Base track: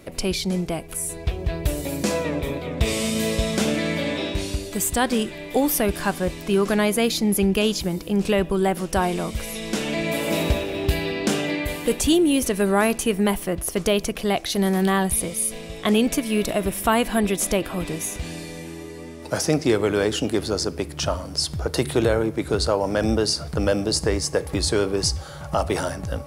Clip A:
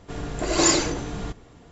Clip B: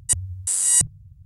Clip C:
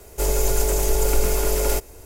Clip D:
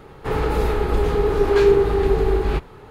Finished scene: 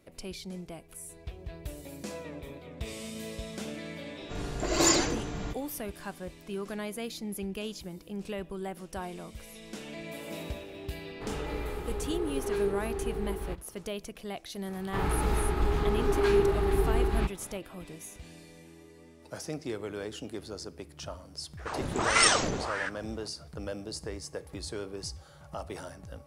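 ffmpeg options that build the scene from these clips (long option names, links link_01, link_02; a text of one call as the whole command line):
ffmpeg -i bed.wav -i cue0.wav -i cue1.wav -i cue2.wav -i cue3.wav -filter_complex "[1:a]asplit=2[link_01][link_02];[4:a]asplit=2[link_03][link_04];[0:a]volume=-16.5dB[link_05];[link_04]equalizer=frequency=490:width=4.7:gain=-13[link_06];[link_02]aeval=exprs='val(0)*sin(2*PI*910*n/s+910*0.9/1.6*sin(2*PI*1.6*n/s))':channel_layout=same[link_07];[link_01]atrim=end=1.71,asetpts=PTS-STARTPTS,volume=-4.5dB,afade=type=in:duration=0.004:curve=hsin,afade=type=out:start_time=1.706:duration=0.004:curve=hsin,adelay=185661S[link_08];[link_03]atrim=end=2.9,asetpts=PTS-STARTPTS,volume=-16dB,afade=type=in:duration=0.004:curve=hsin,afade=type=out:start_time=2.896:duration=0.004:curve=hsin,adelay=10960[link_09];[link_06]atrim=end=2.9,asetpts=PTS-STARTPTS,volume=-6.5dB,afade=type=in:duration=0.004:curve=hsin,afade=type=out:start_time=2.896:duration=0.004:curve=hsin,adelay=14680[link_10];[link_07]atrim=end=1.71,asetpts=PTS-STARTPTS,volume=-0.5dB,afade=type=in:duration=0.004:curve=hsin,afade=type=out:start_time=1.706:duration=0.004:curve=hsin,adelay=21570[link_11];[link_05][link_08][link_09][link_10][link_11]amix=inputs=5:normalize=0" out.wav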